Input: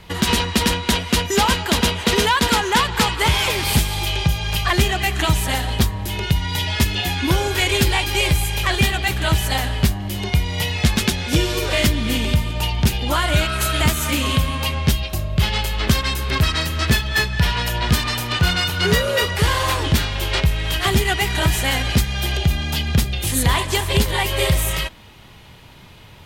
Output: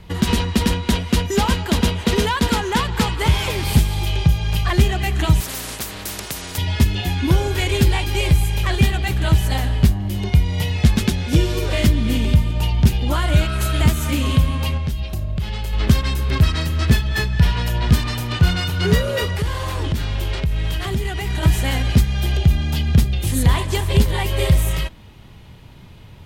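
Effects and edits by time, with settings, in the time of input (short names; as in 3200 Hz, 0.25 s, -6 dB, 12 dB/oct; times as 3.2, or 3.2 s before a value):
5.4–6.58 spectral compressor 10:1
14.77–15.73 compressor 4:1, threshold -23 dBFS
19.3–21.43 compressor, threshold -19 dBFS
whole clip: low shelf 400 Hz +10 dB; gain -5.5 dB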